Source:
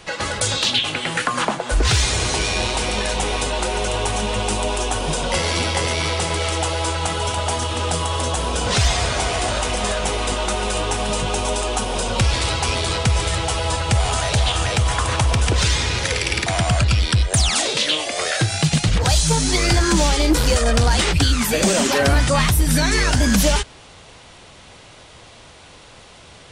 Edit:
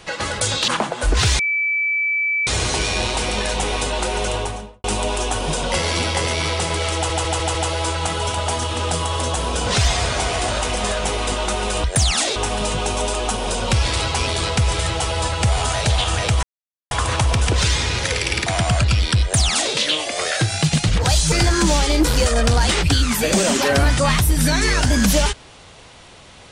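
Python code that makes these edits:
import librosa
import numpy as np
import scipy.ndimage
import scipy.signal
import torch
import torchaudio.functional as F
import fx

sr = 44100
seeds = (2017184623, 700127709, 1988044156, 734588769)

y = fx.studio_fade_out(x, sr, start_s=3.88, length_s=0.56)
y = fx.edit(y, sr, fx.cut(start_s=0.68, length_s=0.68),
    fx.insert_tone(at_s=2.07, length_s=1.08, hz=2310.0, db=-17.0),
    fx.stutter(start_s=6.55, slice_s=0.15, count=5),
    fx.insert_silence(at_s=14.91, length_s=0.48),
    fx.duplicate(start_s=17.22, length_s=0.52, to_s=10.84),
    fx.cut(start_s=19.32, length_s=0.3), tone=tone)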